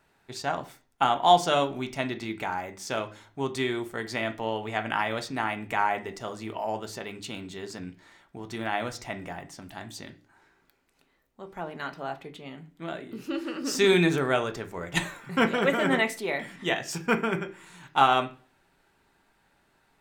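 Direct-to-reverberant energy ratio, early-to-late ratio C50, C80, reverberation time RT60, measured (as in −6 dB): 6.5 dB, 16.0 dB, 21.5 dB, 0.40 s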